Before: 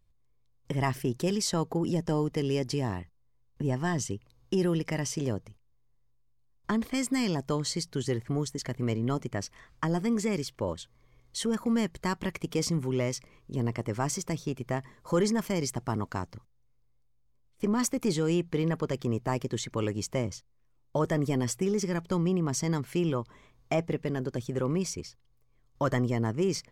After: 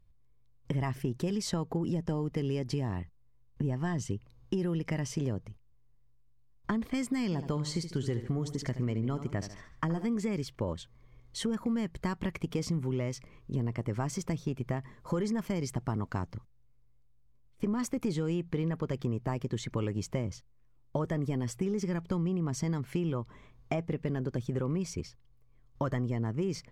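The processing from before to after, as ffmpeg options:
-filter_complex "[0:a]asettb=1/sr,asplit=3[a][b][c];[a]atrim=end=7.244[d];[b]atrim=start=7.24:end=10.05,asetpts=PTS-STARTPTS,afade=t=in:d=0.004:c=qsin,afade=t=out:st=2.806:d=0.004:c=qsin,aecho=1:1:73|146|219|292:0.251|0.098|0.0382|0.0149,atrim=end_sample=123921[e];[c]atrim=start=10.046[f];[d][e]acrossfade=d=0.004:c1=hsin:c2=qsin[g];[g][f]acrossfade=d=0.004:c1=qsin:c2=hsin,bass=f=250:g=5,treble=f=4k:g=-6,acompressor=threshold=-28dB:ratio=6"

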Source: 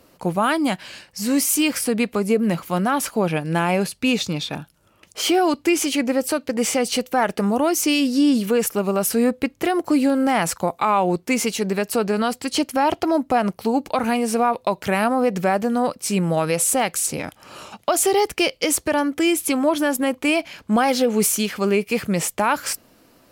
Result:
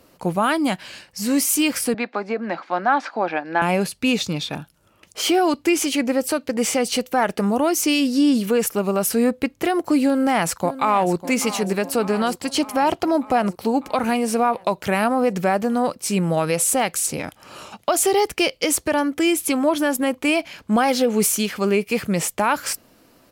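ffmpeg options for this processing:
-filter_complex "[0:a]asettb=1/sr,asplit=3[a][b][c];[a]atrim=end=1.944[d];[b]atrim=start=1.94:end=3.62,asetpts=PTS-STARTPTS,afade=t=in:d=0.004:c=qsin,afade=t=out:st=1.676:d=0.004:c=qsin,highpass=f=280:w=0.5412,highpass=f=280:w=1.3066,equalizer=f=430:t=q:w=4:g=-8,equalizer=f=790:t=q:w=4:g=7,equalizer=f=1.6k:t=q:w=4:g=6,equalizer=f=3k:t=q:w=4:g=-8,lowpass=f=4.3k:w=0.5412,lowpass=f=4.3k:w=1.3066[e];[c]atrim=start=3.616[f];[d][e]acrossfade=d=0.004:c1=hsin:c2=qsin[g];[g][f]acrossfade=d=0.004:c1=qsin:c2=hsin,asplit=2[h][i];[i]afade=t=in:st=10.04:d=0.01,afade=t=out:st=11.15:d=0.01,aecho=0:1:600|1200|1800|2400|3000|3600|4200|4800|5400:0.199526|0.139668|0.0977679|0.0684375|0.0479062|0.0335344|0.0234741|0.0164318|0.0115023[j];[h][j]amix=inputs=2:normalize=0"

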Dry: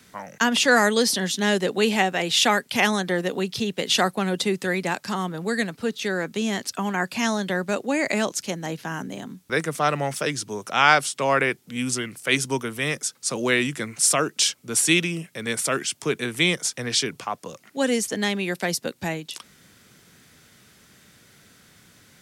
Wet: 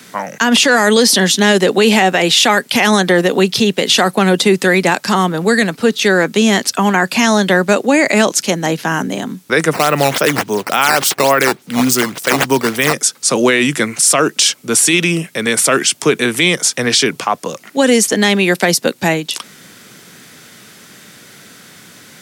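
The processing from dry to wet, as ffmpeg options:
-filter_complex "[0:a]asplit=3[a][b][c];[a]afade=t=out:st=9.72:d=0.02[d];[b]acrusher=samples=8:mix=1:aa=0.000001:lfo=1:lforange=12.8:lforate=3.5,afade=t=in:st=9.72:d=0.02,afade=t=out:st=12.92:d=0.02[e];[c]afade=t=in:st=12.92:d=0.02[f];[d][e][f]amix=inputs=3:normalize=0,acontrast=25,highpass=160,alimiter=level_in=10.5dB:limit=-1dB:release=50:level=0:latency=1,volume=-1dB"

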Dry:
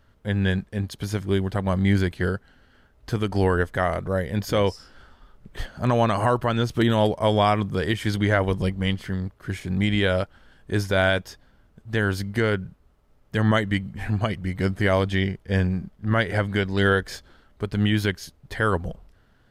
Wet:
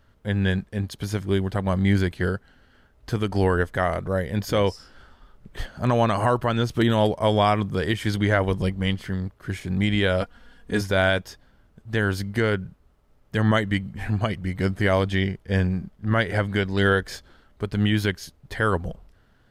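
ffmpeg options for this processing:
-filter_complex "[0:a]asettb=1/sr,asplit=3[a][b][c];[a]atrim=end=10.214[d];[b]atrim=start=10.21:end=10.81,asetpts=PTS-STARTPTS,afade=t=in:d=0.004:c=qsin,afade=t=out:st=0.596:d=0.004:c=qsin,aecho=1:1:4.2:0.79,atrim=end_sample=26460[e];[c]atrim=start=10.806[f];[d][e]acrossfade=d=0.004:c1=hsin:c2=qsin[g];[g][f]acrossfade=d=0.004:c1=qsin:c2=hsin"

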